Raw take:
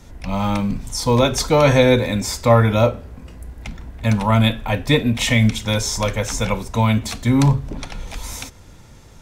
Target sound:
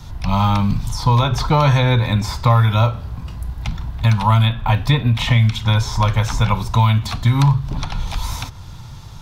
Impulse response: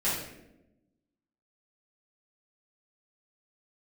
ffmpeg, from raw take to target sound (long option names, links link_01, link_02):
-filter_complex "[0:a]equalizer=frequency=125:width_type=o:width=1:gain=8,equalizer=frequency=250:width_type=o:width=1:gain=-7,equalizer=frequency=500:width_type=o:width=1:gain=-10,equalizer=frequency=1000:width_type=o:width=1:gain=6,equalizer=frequency=2000:width_type=o:width=1:gain=-7,equalizer=frequency=4000:width_type=o:width=1:gain=6,equalizer=frequency=8000:width_type=o:width=1:gain=-7,acrossover=split=1200|2500[link_01][link_02][link_03];[link_01]acompressor=threshold=-20dB:ratio=4[link_04];[link_02]acompressor=threshold=-31dB:ratio=4[link_05];[link_03]acompressor=threshold=-40dB:ratio=4[link_06];[link_04][link_05][link_06]amix=inputs=3:normalize=0,volume=7dB"